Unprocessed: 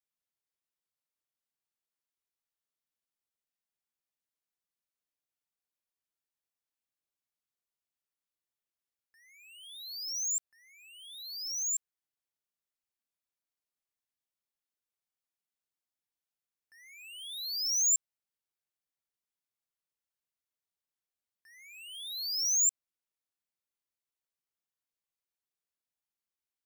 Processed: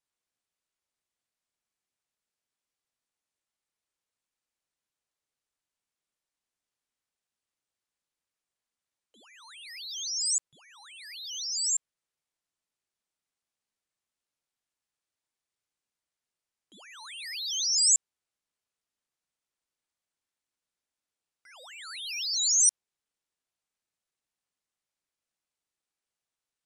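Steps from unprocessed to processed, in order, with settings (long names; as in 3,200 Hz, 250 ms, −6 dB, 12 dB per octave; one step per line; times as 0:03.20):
Chebyshev low-pass filter 9,200 Hz, order 3
ring modulator whose carrier an LFO sweeps 890 Hz, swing 85%, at 3.7 Hz
level +8 dB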